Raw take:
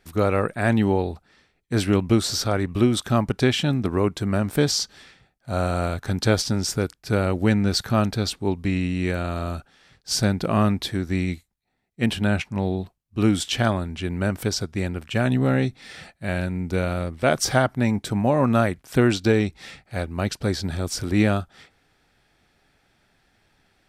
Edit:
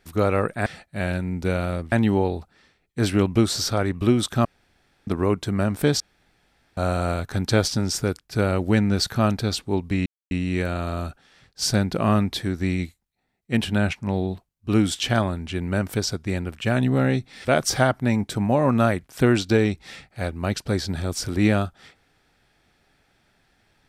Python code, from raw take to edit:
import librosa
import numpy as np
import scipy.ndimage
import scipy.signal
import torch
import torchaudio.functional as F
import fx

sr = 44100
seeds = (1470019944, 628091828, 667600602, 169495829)

y = fx.edit(x, sr, fx.room_tone_fill(start_s=3.19, length_s=0.62),
    fx.room_tone_fill(start_s=4.74, length_s=0.77),
    fx.insert_silence(at_s=8.8, length_s=0.25),
    fx.move(start_s=15.94, length_s=1.26, to_s=0.66), tone=tone)